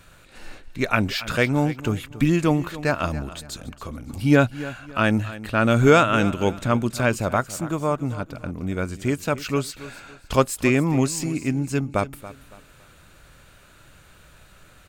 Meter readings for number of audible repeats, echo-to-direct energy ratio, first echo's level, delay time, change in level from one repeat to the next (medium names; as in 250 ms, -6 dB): 2, -15.5 dB, -16.0 dB, 280 ms, -10.0 dB